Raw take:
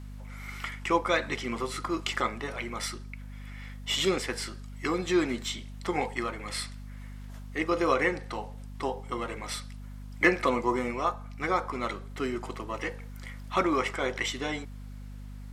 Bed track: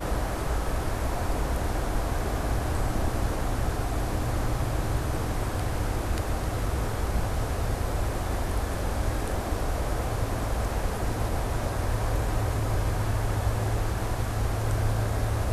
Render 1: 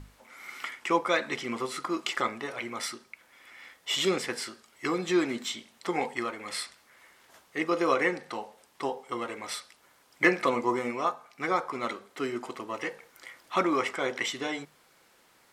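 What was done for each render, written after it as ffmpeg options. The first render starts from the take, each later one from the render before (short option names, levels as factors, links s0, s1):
-af "bandreject=f=50:t=h:w=6,bandreject=f=100:t=h:w=6,bandreject=f=150:t=h:w=6,bandreject=f=200:t=h:w=6,bandreject=f=250:t=h:w=6"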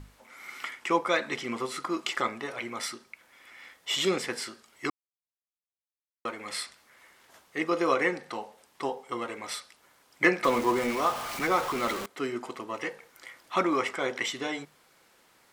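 -filter_complex "[0:a]asettb=1/sr,asplit=3[s0][s1][s2];[s0]atrim=end=10.444[s3];[s1]atrim=start=10.44:end=12.06,asetpts=PTS-STARTPTS,afade=t=in:d=0.004:c=qsin,afade=t=out:st=1.616:d=0.004:c=qsin,aeval=exprs='val(0)+0.5*0.0299*sgn(val(0))':c=same[s4];[s2]atrim=start=12.056[s5];[s3][s4]acrossfade=d=0.004:c1=hsin:c2=qsin[s6];[s6][s5]acrossfade=d=0.004:c1=qsin:c2=hsin,asplit=3[s7][s8][s9];[s7]atrim=end=4.9,asetpts=PTS-STARTPTS,afade=t=out:st=4.896:d=0.004:c=hsin[s10];[s8]atrim=start=4.9:end=6.25,asetpts=PTS-STARTPTS,volume=0[s11];[s9]atrim=start=6.25,asetpts=PTS-STARTPTS,afade=t=in:d=0.004:c=hsin[s12];[s10][s11][s12]concat=n=3:v=0:a=1"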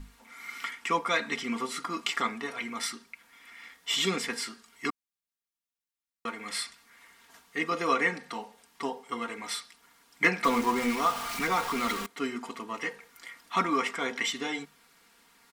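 -af "equalizer=f=560:w=2.2:g=-9.5,aecho=1:1:4.3:0.66"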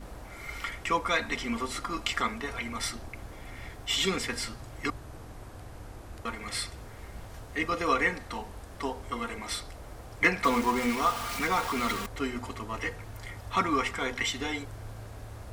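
-filter_complex "[1:a]volume=0.15[s0];[0:a][s0]amix=inputs=2:normalize=0"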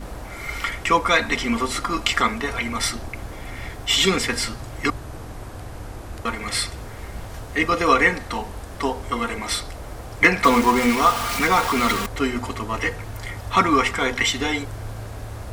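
-af "volume=2.99,alimiter=limit=0.794:level=0:latency=1"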